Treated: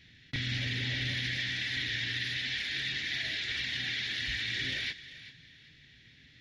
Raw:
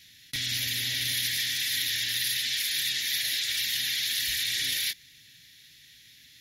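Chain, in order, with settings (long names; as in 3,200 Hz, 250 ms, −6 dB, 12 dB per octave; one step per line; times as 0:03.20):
head-to-tape spacing loss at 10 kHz 39 dB
on a send: feedback echo with a high-pass in the loop 390 ms, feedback 28%, high-pass 660 Hz, level −15 dB
on the sum: level +7.5 dB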